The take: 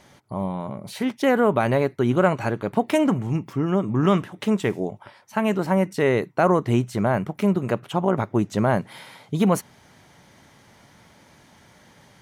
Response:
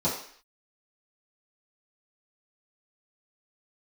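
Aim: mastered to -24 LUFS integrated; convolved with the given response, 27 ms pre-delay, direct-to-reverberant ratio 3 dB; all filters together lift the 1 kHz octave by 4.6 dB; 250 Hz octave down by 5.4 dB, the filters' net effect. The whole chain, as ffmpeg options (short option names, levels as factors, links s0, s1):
-filter_complex "[0:a]equalizer=f=250:t=o:g=-8,equalizer=f=1000:t=o:g=6.5,asplit=2[s0][s1];[1:a]atrim=start_sample=2205,adelay=27[s2];[s1][s2]afir=irnorm=-1:irlink=0,volume=0.211[s3];[s0][s3]amix=inputs=2:normalize=0,volume=0.631"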